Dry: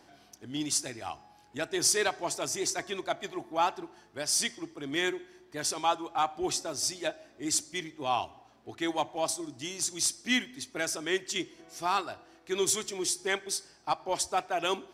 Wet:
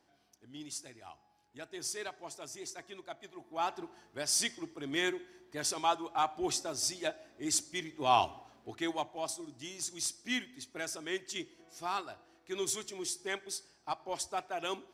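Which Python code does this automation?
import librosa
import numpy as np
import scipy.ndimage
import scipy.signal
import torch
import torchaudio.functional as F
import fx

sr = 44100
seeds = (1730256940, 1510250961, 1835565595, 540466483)

y = fx.gain(x, sr, db=fx.line((3.34, -13.0), (3.81, -2.5), (7.86, -2.5), (8.24, 5.0), (9.11, -7.0)))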